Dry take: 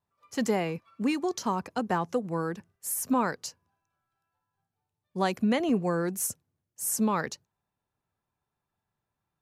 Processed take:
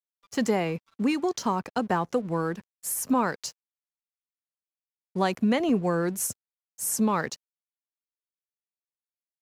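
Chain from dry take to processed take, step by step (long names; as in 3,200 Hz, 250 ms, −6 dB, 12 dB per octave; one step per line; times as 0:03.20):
high-shelf EQ 8,600 Hz −4.5 dB
in parallel at −0.5 dB: downward compressor, threshold −33 dBFS, peak gain reduction 11.5 dB
on the sum: dead-zone distortion −52.5 dBFS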